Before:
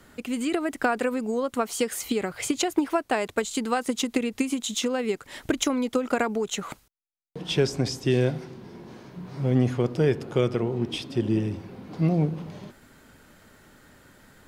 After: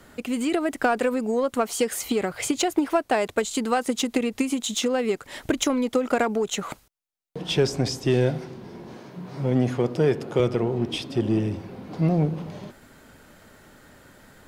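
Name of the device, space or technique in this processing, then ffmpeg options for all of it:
parallel distortion: -filter_complex "[0:a]asplit=2[a][b];[b]asoftclip=type=hard:threshold=-24.5dB,volume=-7dB[c];[a][c]amix=inputs=2:normalize=0,asettb=1/sr,asplit=3[d][e][f];[d]atrim=end=8.974[g];[e]atrim=start=8.97:end=10.4,asetpts=PTS-STARTPTS,afade=t=in:d=0.004:c=qsin,afade=t=out:st=1.426:d=0.004:c=qsin,highpass=120[h];[f]atrim=start=10.396[i];[g][h]acrossfade=d=0.004:c1=hsin:c2=qsin[j];[j][i]acrossfade=d=0.004:c1=qsin:c2=hsin,equalizer=f=630:w=1.5:g=3,volume=-1dB"

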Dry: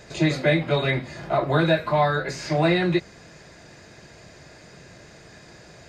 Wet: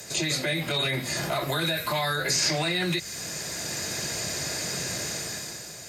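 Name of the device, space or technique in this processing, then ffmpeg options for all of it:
FM broadcast chain: -filter_complex "[0:a]highpass=77,dynaudnorm=f=100:g=13:m=12dB,acrossover=split=120|1500|6500[a][b][c][d];[a]acompressor=threshold=-38dB:ratio=4[e];[b]acompressor=threshold=-26dB:ratio=4[f];[c]acompressor=threshold=-28dB:ratio=4[g];[d]acompressor=threshold=-54dB:ratio=4[h];[e][f][g][h]amix=inputs=4:normalize=0,aemphasis=mode=production:type=50fm,alimiter=limit=-19dB:level=0:latency=1:release=36,asoftclip=type=hard:threshold=-19.5dB,lowpass=f=15k:w=0.5412,lowpass=f=15k:w=1.3066,aemphasis=mode=production:type=50fm"

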